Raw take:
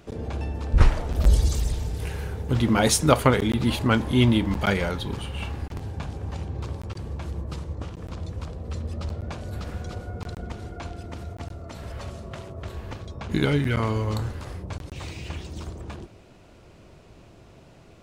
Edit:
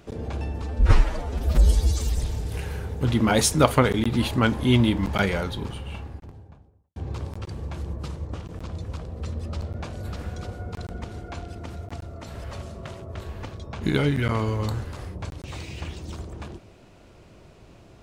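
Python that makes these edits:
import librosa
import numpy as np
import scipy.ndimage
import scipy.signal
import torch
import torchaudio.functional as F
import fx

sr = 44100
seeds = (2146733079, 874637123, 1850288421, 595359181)

y = fx.studio_fade_out(x, sr, start_s=4.8, length_s=1.64)
y = fx.edit(y, sr, fx.stretch_span(start_s=0.62, length_s=1.04, factor=1.5), tone=tone)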